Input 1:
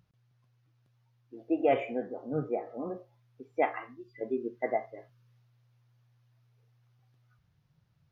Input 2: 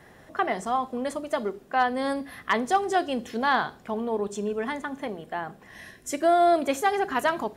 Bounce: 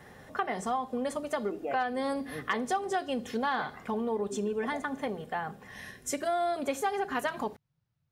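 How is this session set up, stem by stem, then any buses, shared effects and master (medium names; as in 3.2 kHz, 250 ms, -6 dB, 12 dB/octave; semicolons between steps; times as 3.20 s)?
-9.5 dB, 0.00 s, no send, none
+1.5 dB, 0.00 s, no send, comb of notches 330 Hz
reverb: none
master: compression 3:1, threshold -29 dBFS, peak gain reduction 10.5 dB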